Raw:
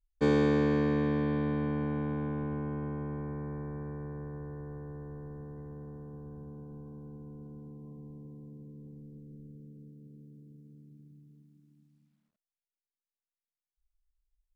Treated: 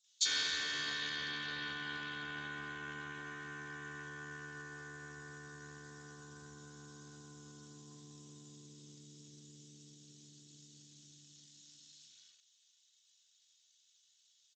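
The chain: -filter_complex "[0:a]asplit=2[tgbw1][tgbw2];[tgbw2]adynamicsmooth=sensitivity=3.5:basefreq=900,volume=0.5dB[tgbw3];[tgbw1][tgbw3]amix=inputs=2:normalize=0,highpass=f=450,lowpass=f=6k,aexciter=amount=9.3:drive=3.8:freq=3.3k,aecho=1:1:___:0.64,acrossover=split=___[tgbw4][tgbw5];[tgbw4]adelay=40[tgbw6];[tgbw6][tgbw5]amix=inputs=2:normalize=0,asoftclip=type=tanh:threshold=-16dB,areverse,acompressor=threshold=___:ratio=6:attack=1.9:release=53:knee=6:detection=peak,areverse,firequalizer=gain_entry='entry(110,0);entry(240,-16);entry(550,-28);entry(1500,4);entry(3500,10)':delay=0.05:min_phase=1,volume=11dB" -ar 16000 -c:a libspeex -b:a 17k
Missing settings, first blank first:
2.7, 4400, -42dB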